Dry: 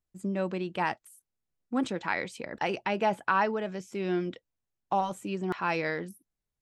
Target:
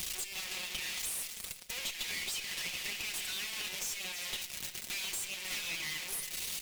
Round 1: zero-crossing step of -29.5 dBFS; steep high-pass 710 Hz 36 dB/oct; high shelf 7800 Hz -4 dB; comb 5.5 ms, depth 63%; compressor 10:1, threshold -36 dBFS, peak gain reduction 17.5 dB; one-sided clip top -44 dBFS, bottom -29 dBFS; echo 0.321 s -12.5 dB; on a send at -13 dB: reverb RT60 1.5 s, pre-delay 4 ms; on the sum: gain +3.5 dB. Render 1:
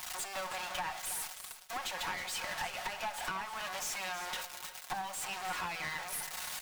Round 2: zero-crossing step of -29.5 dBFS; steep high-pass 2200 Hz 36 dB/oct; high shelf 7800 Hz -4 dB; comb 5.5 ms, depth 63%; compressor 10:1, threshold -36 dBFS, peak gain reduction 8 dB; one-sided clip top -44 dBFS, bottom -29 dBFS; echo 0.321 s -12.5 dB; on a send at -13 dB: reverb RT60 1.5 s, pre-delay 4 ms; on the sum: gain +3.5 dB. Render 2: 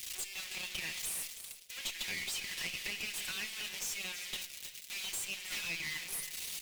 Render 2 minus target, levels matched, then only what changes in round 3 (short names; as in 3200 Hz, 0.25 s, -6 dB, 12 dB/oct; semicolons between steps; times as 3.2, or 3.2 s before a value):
zero-crossing step: distortion -6 dB
change: zero-crossing step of -19.5 dBFS